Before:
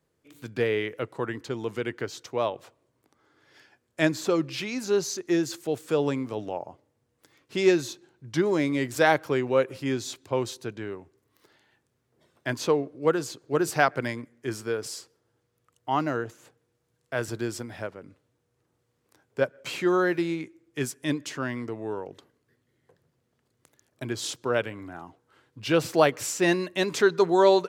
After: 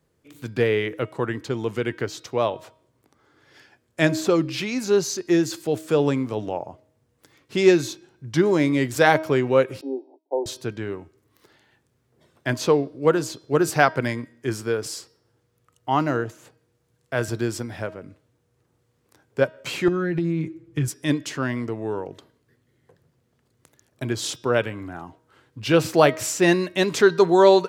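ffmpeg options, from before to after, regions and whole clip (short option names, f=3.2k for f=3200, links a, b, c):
-filter_complex "[0:a]asettb=1/sr,asplit=3[a][b][c];[a]atrim=end=9.814[d];[b]atrim=start=9.81:end=10.46,asetpts=PTS-STARTPTS,afade=t=in:d=0.004:c=qsin,afade=t=out:st=0.646:d=0.004:c=qsin,agate=range=-25dB:threshold=-49dB:ratio=16:release=100:detection=peak,asuperpass=centerf=490:order=20:qfactor=0.8,tiltshelf=f=700:g=-6.5[e];[c]atrim=start=10.456[f];[d][e]acrossfade=d=0.004:c1=hsin:c2=qsin[g];[g][f]acrossfade=d=0.004:c1=qsin:c2=hsin,asettb=1/sr,asplit=3[h][i][j];[h]atrim=end=19.884[k];[i]atrim=start=19.88:end=20.88,asetpts=PTS-STARTPTS,afade=t=in:d=0.004:c=qsin,afade=t=out:st=0.996:d=0.004:c=qsin,bass=f=250:g=13,treble=f=4k:g=-6,aecho=1:1:6.1:0.71,atrim=end_sample=44100,acompressor=threshold=-25dB:ratio=12:attack=3.2:release=140:knee=1:detection=peak[l];[j]atrim=start=20.876[m];[k][l]acrossfade=d=0.004:c1=hsin:c2=qsin[n];[n][m]acrossfade=d=0.004:c1=qsin:c2=hsin,lowshelf=f=180:g=5,bandreject=f=316.2:t=h:w=4,bandreject=f=632.4:t=h:w=4,bandreject=f=948.6:t=h:w=4,bandreject=f=1.2648k:t=h:w=4,bandreject=f=1.581k:t=h:w=4,bandreject=f=1.8972k:t=h:w=4,bandreject=f=2.2134k:t=h:w=4,bandreject=f=2.5296k:t=h:w=4,bandreject=f=2.8458k:t=h:w=4,bandreject=f=3.162k:t=h:w=4,bandreject=f=3.4782k:t=h:w=4,bandreject=f=3.7944k:t=h:w=4,bandreject=f=4.1106k:t=h:w=4,bandreject=f=4.4268k:t=h:w=4,bandreject=f=4.743k:t=h:w=4,bandreject=f=5.0592k:t=h:w=4,bandreject=f=5.3754k:t=h:w=4,bandreject=f=5.6916k:t=h:w=4,volume=4dB"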